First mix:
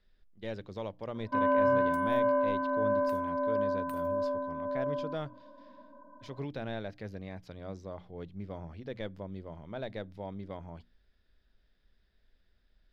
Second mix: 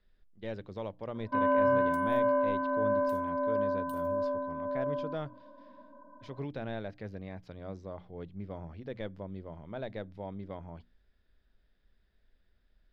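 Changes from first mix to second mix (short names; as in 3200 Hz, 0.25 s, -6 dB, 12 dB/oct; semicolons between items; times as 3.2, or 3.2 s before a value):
speech: add LPF 3200 Hz 6 dB/oct; second sound: add brick-wall FIR high-pass 2800 Hz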